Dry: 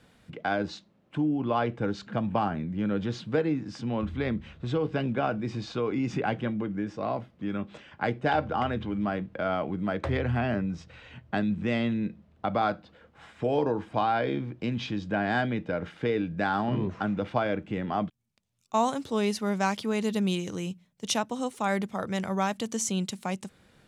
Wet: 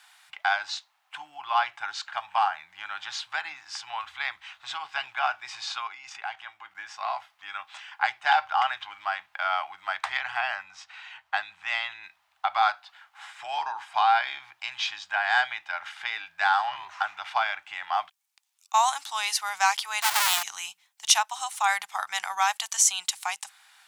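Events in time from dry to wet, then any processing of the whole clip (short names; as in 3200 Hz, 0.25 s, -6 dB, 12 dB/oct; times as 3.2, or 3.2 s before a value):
5.87–6.75 level quantiser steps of 12 dB
10.63–12.04 high shelf 5100 Hz -6.5 dB
20.02–20.43 half-waves squared off
whole clip: elliptic high-pass 790 Hz, stop band 40 dB; high shelf 4000 Hz +7 dB; gain +6.5 dB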